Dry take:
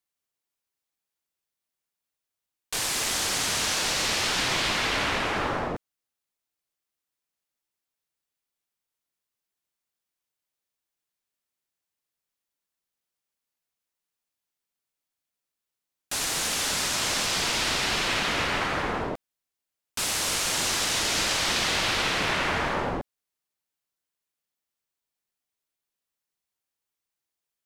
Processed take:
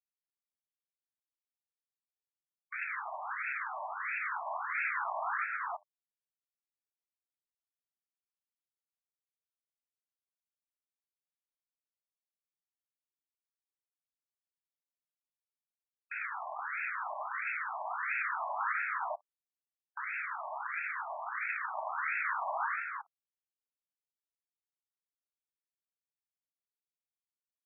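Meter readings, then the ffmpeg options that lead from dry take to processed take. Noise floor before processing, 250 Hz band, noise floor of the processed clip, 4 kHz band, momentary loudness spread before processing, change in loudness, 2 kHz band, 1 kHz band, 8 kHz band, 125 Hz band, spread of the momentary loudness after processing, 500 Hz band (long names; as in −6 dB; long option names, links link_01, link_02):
below −85 dBFS, below −40 dB, below −85 dBFS, below −40 dB, 8 LU, −11.0 dB, −6.5 dB, −5.0 dB, below −40 dB, below −40 dB, 7 LU, −13.5 dB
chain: -af "aresample=16000,aresample=44100,alimiter=limit=-19.5dB:level=0:latency=1,bandreject=frequency=101.5:width_type=h:width=4,bandreject=frequency=203:width_type=h:width=4,bandreject=frequency=304.5:width_type=h:width=4,aeval=exprs='val(0)*gte(abs(val(0)),0.00355)':channel_layout=same,afftfilt=real='re*between(b*sr/1024,800*pow(1900/800,0.5+0.5*sin(2*PI*1.5*pts/sr))/1.41,800*pow(1900/800,0.5+0.5*sin(2*PI*1.5*pts/sr))*1.41)':imag='im*between(b*sr/1024,800*pow(1900/800,0.5+0.5*sin(2*PI*1.5*pts/sr))/1.41,800*pow(1900/800,0.5+0.5*sin(2*PI*1.5*pts/sr))*1.41)':win_size=1024:overlap=0.75"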